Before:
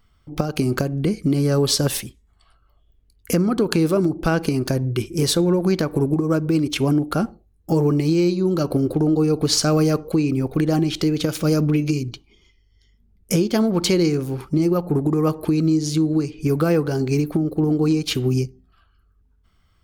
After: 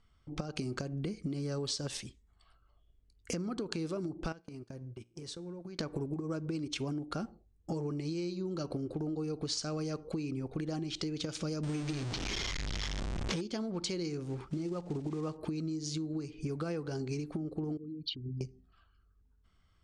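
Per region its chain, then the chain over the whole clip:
4.32–5.79 gate -24 dBFS, range -30 dB + compressor 12:1, threshold -31 dBFS + resonator 59 Hz, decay 0.59 s, mix 30%
11.63–13.41 zero-crossing step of -20 dBFS + sample-rate reducer 8700 Hz
14.23–15.37 block floating point 5-bit + high shelf 4500 Hz -5.5 dB
17.77–18.41 formant sharpening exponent 3 + ladder low-pass 5000 Hz, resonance 55% + dynamic EQ 360 Hz, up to -6 dB, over -42 dBFS, Q 1.6
whole clip: dynamic EQ 5000 Hz, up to +5 dB, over -40 dBFS, Q 0.79; compressor 6:1, threshold -26 dBFS; steep low-pass 8800 Hz 36 dB/oct; gain -8 dB

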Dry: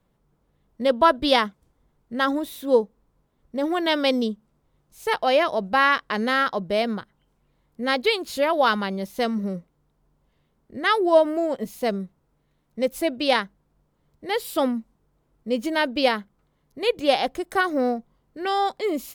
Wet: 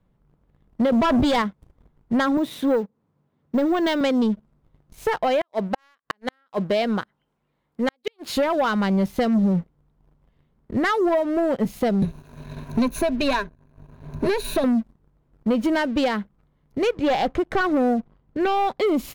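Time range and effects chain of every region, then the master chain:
0.92–1.42 G.711 law mismatch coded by mu + hard clip -16 dBFS + fast leveller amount 100%
2.37–4.01 HPF 110 Hz 24 dB/oct + careless resampling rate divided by 2×, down filtered, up hold
5.41–8.37 HPF 440 Hz 6 dB/oct + flipped gate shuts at -13 dBFS, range -41 dB
12.02–14.64 half-wave gain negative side -7 dB + ripple EQ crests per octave 1.5, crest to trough 15 dB + three-band squash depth 70%
16.93–18.79 overloaded stage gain 18 dB + air absorption 100 m
whole clip: compressor 6:1, threshold -27 dBFS; tone controls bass +7 dB, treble -9 dB; sample leveller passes 2; gain +2.5 dB

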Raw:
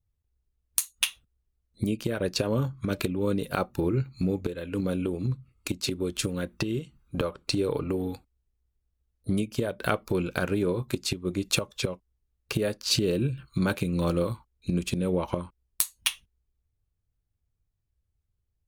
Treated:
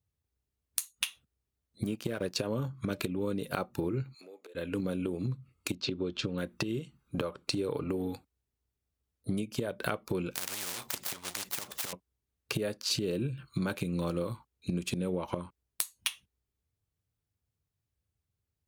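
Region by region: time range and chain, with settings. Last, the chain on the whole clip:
1.83–2.37 G.711 law mismatch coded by A + notch 860 Hz, Q 14
4.14–4.55 HPF 430 Hz 24 dB/oct + compressor 2.5:1, threshold -55 dBFS
5.75–6.38 LPF 4800 Hz 24 dB/oct + bell 2000 Hz -5.5 dB 0.34 oct
10.35–11.93 switching dead time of 0.089 ms + spectral compressor 10:1
whole clip: HPF 100 Hz 12 dB/oct; compressor 3:1, threshold -30 dBFS

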